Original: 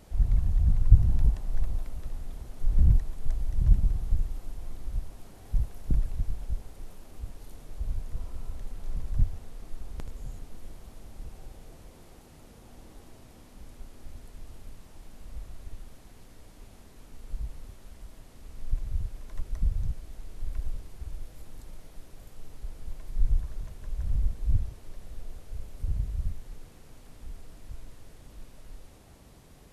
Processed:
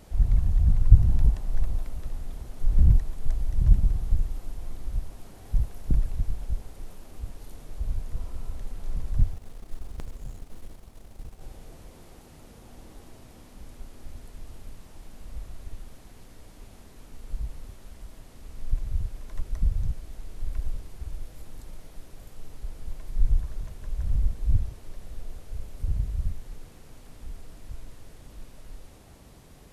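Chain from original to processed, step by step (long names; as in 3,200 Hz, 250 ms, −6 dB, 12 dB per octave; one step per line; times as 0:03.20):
0:09.33–0:11.41: mu-law and A-law mismatch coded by A
level +2.5 dB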